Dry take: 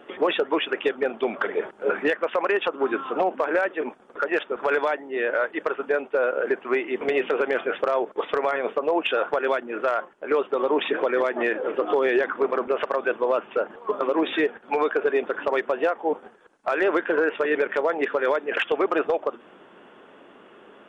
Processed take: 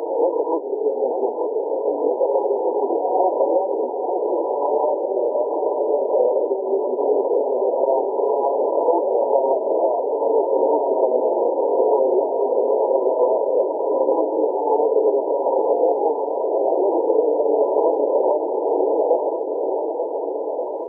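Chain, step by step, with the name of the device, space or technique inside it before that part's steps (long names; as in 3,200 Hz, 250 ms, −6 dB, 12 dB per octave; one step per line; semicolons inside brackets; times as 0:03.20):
brick-wall band-pass 230–1,000 Hz
feedback echo with a long and a short gap by turns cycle 1,480 ms, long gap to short 1.5 to 1, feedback 66%, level −7 dB
ghost voice (reversed playback; convolution reverb RT60 2.0 s, pre-delay 17 ms, DRR 0.5 dB; reversed playback; high-pass filter 430 Hz 12 dB per octave)
level +4 dB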